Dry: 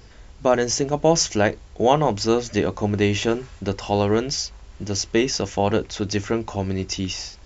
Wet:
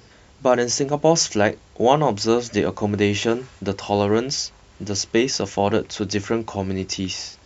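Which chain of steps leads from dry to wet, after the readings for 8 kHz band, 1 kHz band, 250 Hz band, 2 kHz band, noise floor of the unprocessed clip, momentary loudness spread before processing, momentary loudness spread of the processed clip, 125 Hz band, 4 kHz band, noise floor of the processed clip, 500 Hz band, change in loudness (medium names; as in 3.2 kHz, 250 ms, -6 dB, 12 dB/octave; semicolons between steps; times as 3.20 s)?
no reading, +1.0 dB, +1.0 dB, +1.0 dB, -45 dBFS, 8 LU, 9 LU, -1.0 dB, +1.0 dB, -51 dBFS, +1.0 dB, +1.0 dB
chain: high-pass 100 Hz 12 dB/octave; trim +1 dB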